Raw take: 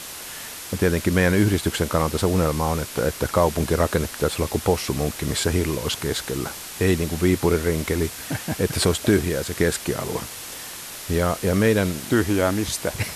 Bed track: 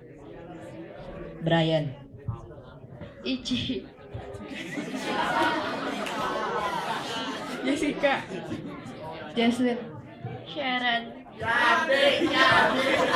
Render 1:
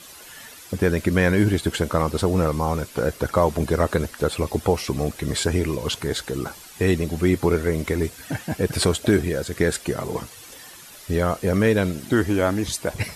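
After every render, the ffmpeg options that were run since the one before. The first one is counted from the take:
-af "afftdn=nr=11:nf=-36"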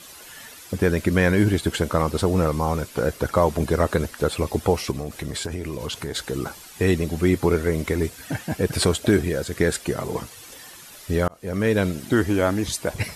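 -filter_complex "[0:a]asettb=1/sr,asplit=3[a][b][c];[a]atrim=end=4.914[d];[b]atrim=start=4.91:end=6.15,asetpts=PTS-STARTPTS,afade=t=in:d=0.004:c=qsin,afade=t=out:st=1.236:d=0.004:c=qsin,acompressor=threshold=-25dB:ratio=6:attack=3.2:release=140:knee=1:detection=peak[e];[c]atrim=start=6.146[f];[d][e]acrossfade=d=0.004:c1=hsin:c2=qsin[g];[g][f]acrossfade=d=0.004:c1=qsin:c2=hsin,asplit=2[h][i];[h]atrim=end=11.28,asetpts=PTS-STARTPTS,afade=t=out:st=11.276:d=0.004:c=hsin[j];[i]atrim=start=11.28,asetpts=PTS-STARTPTS,afade=t=in:d=0.52[k];[j][k]concat=n=2:v=0:a=1"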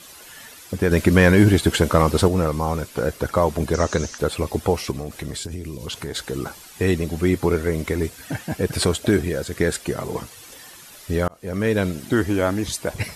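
-filter_complex "[0:a]asettb=1/sr,asplit=3[a][b][c];[a]atrim=end=0.914[d];[b]atrim=start=0.91:end=2.28,asetpts=PTS-STARTPTS,afade=t=in:d=0.004:c=qsin,afade=t=out:st=1.366:d=0.004:c=qsin,acontrast=38[e];[c]atrim=start=2.276[f];[d][e]acrossfade=d=0.004:c1=hsin:c2=qsin[g];[g][f]acrossfade=d=0.004:c1=qsin:c2=hsin,asettb=1/sr,asplit=3[h][i][j];[h]atrim=end=3.744[k];[i]atrim=start=3.74:end=4.18,asetpts=PTS-STARTPTS,afade=t=in:d=0.004:c=qsin,afade=t=out:st=0.436:d=0.004:c=qsin,lowpass=f=6.2k:t=q:w=6.4[l];[j]atrim=start=4.176[m];[k][l]acrossfade=d=0.004:c1=hsin:c2=qsin[n];[n][m]acrossfade=d=0.004:c1=qsin:c2=hsin,asettb=1/sr,asplit=3[o][p][q];[o]atrim=end=5.354[r];[p]atrim=start=5.35:end=5.87,asetpts=PTS-STARTPTS,afade=t=in:d=0.004:c=qsin,afade=t=out:st=0.516:d=0.004:c=qsin,acrossover=split=360|3000[s][t][u];[t]acompressor=threshold=-50dB:ratio=2.5:attack=3.2:release=140:knee=2.83:detection=peak[v];[s][v][u]amix=inputs=3:normalize=0[w];[q]atrim=start=5.866[x];[r][w]acrossfade=d=0.004:c1=hsin:c2=qsin[y];[y][x]acrossfade=d=0.004:c1=qsin:c2=hsin"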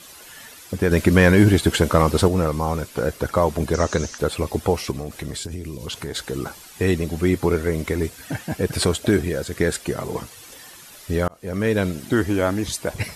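-af anull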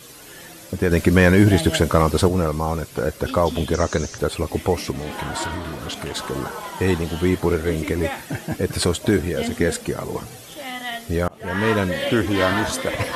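-filter_complex "[1:a]volume=-4dB[a];[0:a][a]amix=inputs=2:normalize=0"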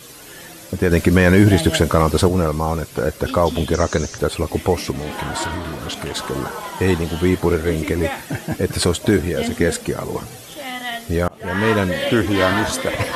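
-af "volume=2.5dB,alimiter=limit=-3dB:level=0:latency=1"

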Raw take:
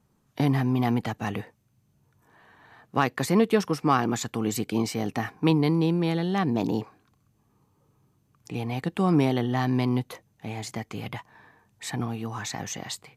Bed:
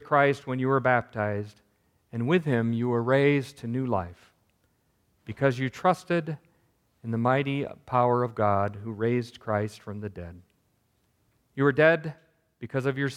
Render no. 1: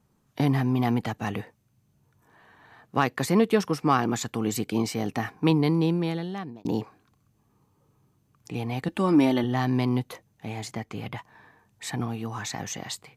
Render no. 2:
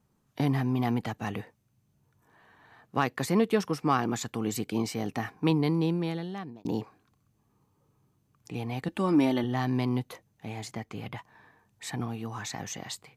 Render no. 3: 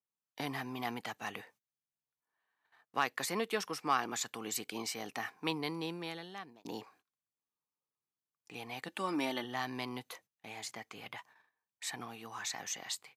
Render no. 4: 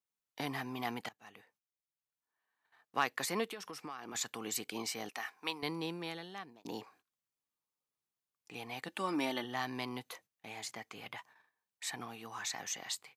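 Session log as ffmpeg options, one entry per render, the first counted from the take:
-filter_complex "[0:a]asettb=1/sr,asplit=3[a][b][c];[a]atrim=end=8.884[d];[b]atrim=start=8.88:end=9.44,asetpts=PTS-STARTPTS,afade=t=in:d=0.004:c=qsin,afade=t=out:st=0.556:d=0.004:c=qsin,aecho=1:1:3.4:0.65,atrim=end_sample=24696[e];[c]atrim=start=9.436[f];[d][e]acrossfade=d=0.004:c1=hsin:c2=qsin[g];[g][f]acrossfade=d=0.004:c1=qsin:c2=hsin,asettb=1/sr,asplit=3[h][i][j];[h]atrim=end=10.674[k];[i]atrim=start=10.67:end=11.18,asetpts=PTS-STARTPTS,afade=t=in:d=0.004:c=qsin,afade=t=out:st=0.506:d=0.004:c=qsin,highshelf=f=4.2k:g=-5.5[l];[j]atrim=start=11.176[m];[k][l]acrossfade=d=0.004:c1=hsin:c2=qsin[n];[n][m]acrossfade=d=0.004:c1=qsin:c2=hsin,asplit=2[o][p];[o]atrim=end=6.65,asetpts=PTS-STARTPTS,afade=t=out:st=5.89:d=0.76[q];[p]atrim=start=6.65,asetpts=PTS-STARTPTS,afade=t=in:d=0.004:c=hsin[r];[q][r]concat=n=2:v=0:a=1"
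-af "volume=-3.5dB"
-af "agate=range=-21dB:threshold=-54dB:ratio=16:detection=peak,highpass=f=1.3k:p=1"
-filter_complex "[0:a]asettb=1/sr,asplit=3[a][b][c];[a]atrim=end=3.514[d];[b]atrim=start=3.51:end=4.15,asetpts=PTS-STARTPTS,afade=t=in:d=0.004:c=qsin,afade=t=out:st=0.636:d=0.004:c=qsin,acompressor=threshold=-41dB:ratio=6:attack=3.2:release=140:knee=1:detection=peak[e];[c]atrim=start=4.146[f];[d][e]acrossfade=d=0.004:c1=hsin:c2=qsin[g];[g][f]acrossfade=d=0.004:c1=qsin:c2=hsin,asettb=1/sr,asplit=3[h][i][j];[h]atrim=end=5.094[k];[i]atrim=start=5.09:end=5.63,asetpts=PTS-STARTPTS,afade=t=in:d=0.004:c=qsin,afade=t=out:st=0.536:d=0.004:c=qsin,highpass=f=870:p=1[l];[j]atrim=start=5.626[m];[k][l]acrossfade=d=0.004:c1=hsin:c2=qsin[n];[n][m]acrossfade=d=0.004:c1=qsin:c2=hsin,asplit=2[o][p];[o]atrim=end=1.09,asetpts=PTS-STARTPTS,afade=t=out:st=1.086:d=0.004:c=hsin:silence=0.0944061[q];[p]atrim=start=1.09,asetpts=PTS-STARTPTS,afade=t=in:d=1.88:silence=0.0944061[r];[q][r]concat=n=2:v=0:a=1"

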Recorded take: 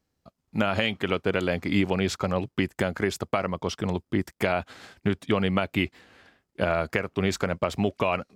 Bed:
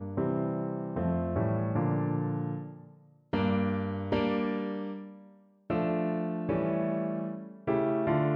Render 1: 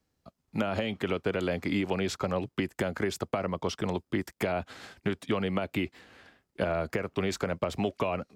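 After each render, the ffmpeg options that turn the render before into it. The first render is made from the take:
-filter_complex "[0:a]acrossover=split=890[a][b];[b]alimiter=limit=-20dB:level=0:latency=1:release=21[c];[a][c]amix=inputs=2:normalize=0,acrossover=split=240|640[d][e][f];[d]acompressor=threshold=-35dB:ratio=4[g];[e]acompressor=threshold=-29dB:ratio=4[h];[f]acompressor=threshold=-33dB:ratio=4[i];[g][h][i]amix=inputs=3:normalize=0"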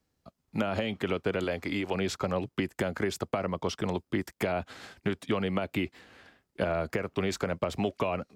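-filter_complex "[0:a]asettb=1/sr,asplit=3[a][b][c];[a]atrim=end=1.444[d];[b]atrim=start=1.44:end=1.95,asetpts=PTS-STARTPTS,afade=t=in:d=0.004:c=qsin,afade=t=out:st=0.506:d=0.004:c=qsin,equalizer=f=170:w=1:g=-6.5[e];[c]atrim=start=1.946[f];[d][e]acrossfade=d=0.004:c1=hsin:c2=qsin[g];[g][f]acrossfade=d=0.004:c1=qsin:c2=hsin"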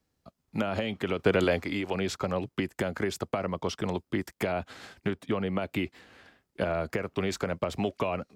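-filter_complex "[0:a]asettb=1/sr,asplit=3[a][b][c];[a]atrim=end=1.194[d];[b]atrim=start=1.19:end=1.63,asetpts=PTS-STARTPTS,afade=t=in:d=0.004:c=qsin,afade=t=out:st=0.436:d=0.004:c=qsin,acontrast=56[e];[c]atrim=start=1.626[f];[d][e]acrossfade=d=0.004:c1=hsin:c2=qsin[g];[g][f]acrossfade=d=0.004:c1=qsin:c2=hsin,asettb=1/sr,asplit=3[h][i][j];[h]atrim=end=5.104[k];[i]atrim=start=5.1:end=5.59,asetpts=PTS-STARTPTS,afade=t=in:d=0.004:c=qsin,afade=t=out:st=0.486:d=0.004:c=qsin,equalizer=f=6.8k:w=0.32:g=-6.5[l];[j]atrim=start=5.586[m];[k][l]acrossfade=d=0.004:c1=hsin:c2=qsin[n];[n][m]acrossfade=d=0.004:c1=qsin:c2=hsin"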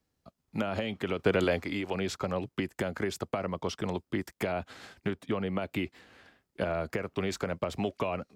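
-af "volume=-2dB"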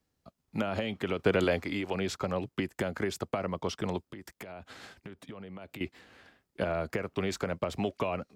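-filter_complex "[0:a]asettb=1/sr,asplit=3[a][b][c];[a]atrim=end=4.044[d];[b]atrim=start=4.04:end=5.81,asetpts=PTS-STARTPTS,afade=t=in:d=0.004:c=qsin,afade=t=out:st=1.766:d=0.004:c=qsin,acompressor=threshold=-40dB:ratio=10:attack=3.2:release=140:knee=1:detection=peak[e];[c]atrim=start=5.806[f];[d][e]acrossfade=d=0.004:c1=hsin:c2=qsin[g];[g][f]acrossfade=d=0.004:c1=qsin:c2=hsin"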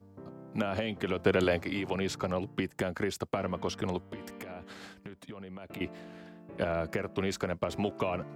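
-filter_complex "[1:a]volume=-18dB[a];[0:a][a]amix=inputs=2:normalize=0"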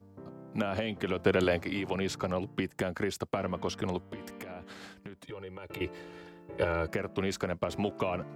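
-filter_complex "[0:a]asettb=1/sr,asplit=3[a][b][c];[a]atrim=end=5.254[d];[b]atrim=start=5.25:end=6.88,asetpts=PTS-STARTPTS,afade=t=in:d=0.004:c=qsin,afade=t=out:st=1.626:d=0.004:c=qsin,aecho=1:1:2.2:0.99,atrim=end_sample=71883[e];[c]atrim=start=6.876[f];[d][e]acrossfade=d=0.004:c1=hsin:c2=qsin[g];[g][f]acrossfade=d=0.004:c1=qsin:c2=hsin"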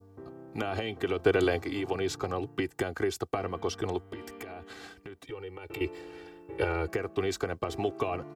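-af "adynamicequalizer=threshold=0.00224:dfrequency=2300:dqfactor=1.6:tfrequency=2300:tqfactor=1.6:attack=5:release=100:ratio=0.375:range=2:mode=cutabove:tftype=bell,aecho=1:1:2.6:0.66"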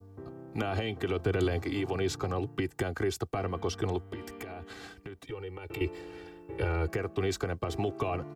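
-filter_complex "[0:a]acrossover=split=190[a][b];[a]acontrast=32[c];[b]alimiter=limit=-23dB:level=0:latency=1:release=32[d];[c][d]amix=inputs=2:normalize=0"

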